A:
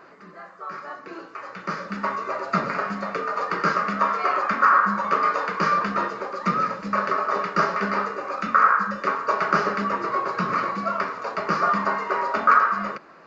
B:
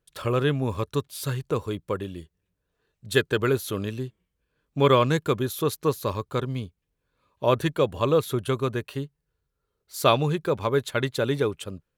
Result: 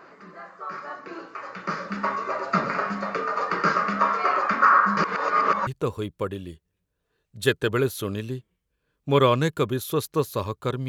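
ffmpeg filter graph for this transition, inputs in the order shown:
-filter_complex "[0:a]apad=whole_dur=10.88,atrim=end=10.88,asplit=2[a][b];[a]atrim=end=4.972[c];[b]atrim=start=4.968:end=5.672,asetpts=PTS-STARTPTS,areverse[d];[1:a]atrim=start=1.358:end=6.57[e];[c][d]acrossfade=d=0.004:c1=hsin:c2=hsin[f];[f][e]acrossfade=d=0.004:c1=hsin:c2=hsin"

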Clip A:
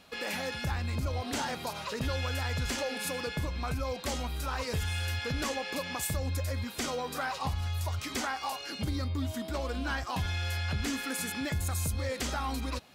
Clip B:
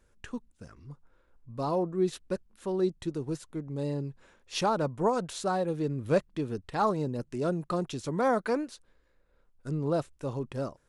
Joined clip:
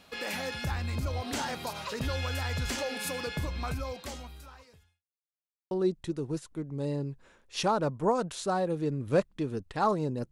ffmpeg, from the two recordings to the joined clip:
-filter_complex "[0:a]apad=whole_dur=10.31,atrim=end=10.31,asplit=2[a][b];[a]atrim=end=5.04,asetpts=PTS-STARTPTS,afade=t=out:st=3.67:d=1.37:c=qua[c];[b]atrim=start=5.04:end=5.71,asetpts=PTS-STARTPTS,volume=0[d];[1:a]atrim=start=2.69:end=7.29,asetpts=PTS-STARTPTS,afade=t=in:d=0.004:c=hsin[e];[c][d][e]concat=n=3:v=0:a=1"

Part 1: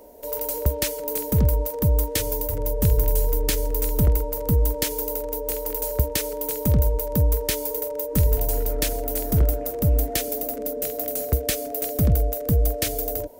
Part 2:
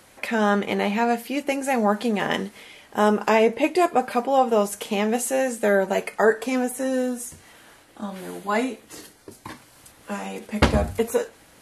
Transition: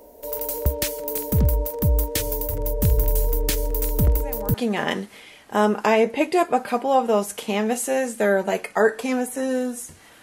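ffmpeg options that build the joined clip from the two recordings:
-filter_complex "[1:a]asplit=2[a][b];[0:a]apad=whole_dur=10.22,atrim=end=10.22,atrim=end=4.542[c];[b]atrim=start=1.968:end=7.65[d];[a]atrim=start=1.56:end=1.97,asetpts=PTS-STARTPTS,volume=-17dB,afade=t=in:d=0.004:c=hsin,afade=t=out:st=0.406:d=0.004:c=hsin,adelay=182133S[e];[c][d]acrossfade=d=0.004:c1=hsin:c2=hsin[f];[f][e]amix=inputs=2:normalize=0"

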